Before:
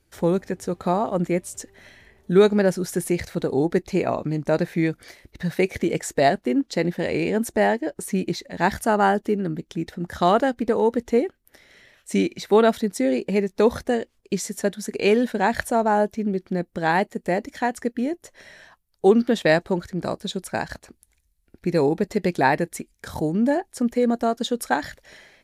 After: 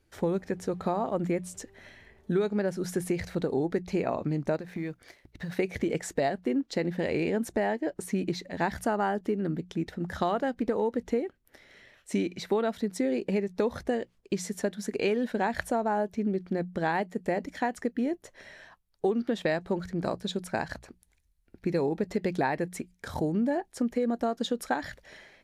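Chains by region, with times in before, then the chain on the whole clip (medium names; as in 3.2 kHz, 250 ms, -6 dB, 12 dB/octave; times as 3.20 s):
4.56–5.52 s: companding laws mixed up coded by A + compression 12:1, threshold -27 dBFS
whole clip: treble shelf 5.6 kHz -8 dB; hum notches 60/120/180 Hz; compression 6:1, threshold -22 dBFS; trim -2 dB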